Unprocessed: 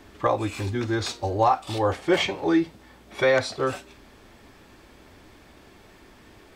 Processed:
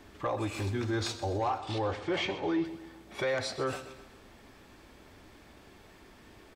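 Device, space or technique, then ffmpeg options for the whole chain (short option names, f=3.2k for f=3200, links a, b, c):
soft clipper into limiter: -filter_complex "[0:a]asoftclip=type=tanh:threshold=-13dB,alimiter=limit=-20dB:level=0:latency=1:release=52,asettb=1/sr,asplit=3[a][b][c];[a]atrim=end=1.584[d];[b]atrim=start=1.58:end=2.65,asetpts=PTS-STARTPTS,afade=t=in:d=0.004:c=qsin,afade=t=out:st=1.066:d=0.004:c=qsin,lowpass=5.5k[e];[c]atrim=start=2.646[f];[d][e]acrossfade=d=0.004:c1=hsin:c2=qsin[g];[g][f]acrossfade=d=0.004:c1=qsin:c2=hsin,aecho=1:1:128|256|384|512|640:0.2|0.0978|0.0479|0.0235|0.0115,volume=-4dB"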